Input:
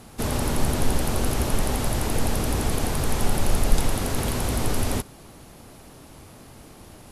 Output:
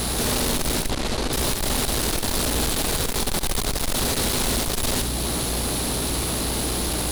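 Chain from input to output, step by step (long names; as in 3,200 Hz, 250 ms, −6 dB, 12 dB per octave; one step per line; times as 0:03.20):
graphic EQ with 15 bands 100 Hz −5 dB, 400 Hz +3 dB, 4,000 Hz +10 dB, 10,000 Hz +9 dB
in parallel at +3 dB: downward compressor, threshold −35 dBFS, peak gain reduction 23.5 dB
on the sum: mains hum 60 Hz, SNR 21 dB
fuzz pedal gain 39 dB, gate −45 dBFS
0:00.86–0:01.33: high-frequency loss of the air 62 metres
on a send: flutter between parallel walls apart 12 metres, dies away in 0.4 s
on the sum: level −8.5 dB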